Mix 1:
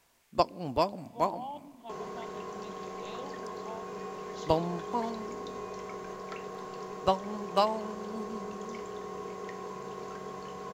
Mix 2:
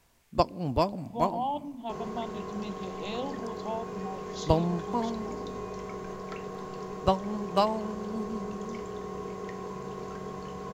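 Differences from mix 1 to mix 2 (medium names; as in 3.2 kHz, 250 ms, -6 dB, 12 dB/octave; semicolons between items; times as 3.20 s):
speech +8.5 dB; master: add bass shelf 200 Hz +12 dB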